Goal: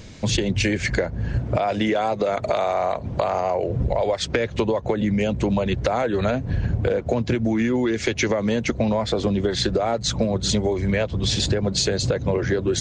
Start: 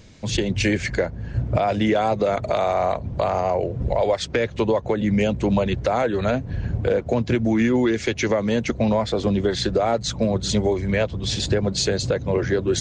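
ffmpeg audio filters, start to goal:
-filter_complex "[0:a]asplit=3[a][b][c];[a]afade=t=out:st=1.37:d=0.02[d];[b]lowshelf=f=170:g=-8.5,afade=t=in:st=1.37:d=0.02,afade=t=out:st=3.68:d=0.02[e];[c]afade=t=in:st=3.68:d=0.02[f];[d][e][f]amix=inputs=3:normalize=0,acompressor=threshold=-25dB:ratio=6,volume=6.5dB"

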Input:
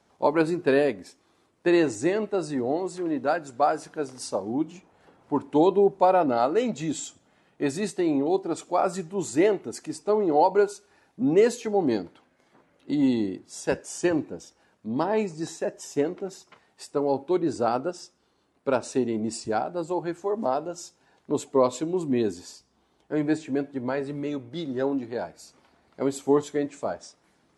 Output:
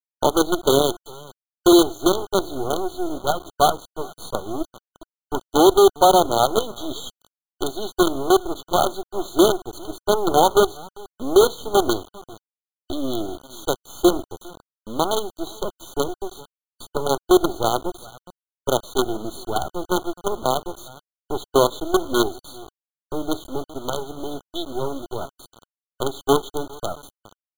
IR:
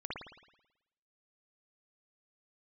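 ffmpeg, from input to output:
-filter_complex "[0:a]crystalizer=i=7.5:c=0,anlmdn=25.1,agate=range=-33dB:threshold=-44dB:ratio=3:detection=peak,highpass=300,equalizer=f=360:t=q:w=4:g=10,equalizer=f=730:t=q:w=4:g=4,equalizer=f=1.4k:t=q:w=4:g=-7,equalizer=f=2.2k:t=q:w=4:g=8,lowpass=f=3.9k:w=0.5412,lowpass=f=3.9k:w=1.3066,asplit=2[a][b];[b]acompressor=threshold=-29dB:ratio=20,volume=-1dB[c];[a][c]amix=inputs=2:normalize=0,aecho=1:1:407:0.106,acrusher=bits=3:dc=4:mix=0:aa=0.000001,afftfilt=real='re*eq(mod(floor(b*sr/1024/1500),2),0)':imag='im*eq(mod(floor(b*sr/1024/1500),2),0)':win_size=1024:overlap=0.75,volume=-1dB"

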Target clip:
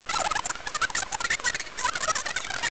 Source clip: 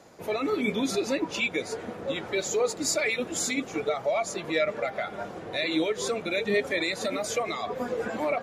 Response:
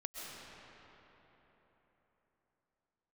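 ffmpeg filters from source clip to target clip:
-af "asetrate=137592,aresample=44100,aresample=16000,acrusher=bits=5:dc=4:mix=0:aa=0.000001,aresample=44100"

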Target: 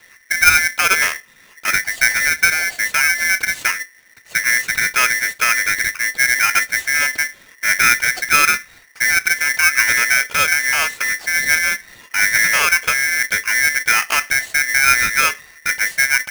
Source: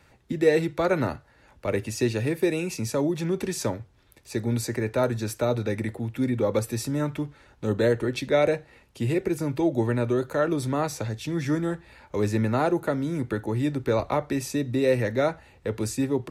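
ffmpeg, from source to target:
-filter_complex "[0:a]acrossover=split=210|3000[a][b][c];[a]acompressor=threshold=-40dB:ratio=1.5[d];[d][b][c]amix=inputs=3:normalize=0,highpass=90,aemphasis=mode=reproduction:type=bsi,aeval=exprs='val(0)*sgn(sin(2*PI*1900*n/s))':c=same,volume=6dB"

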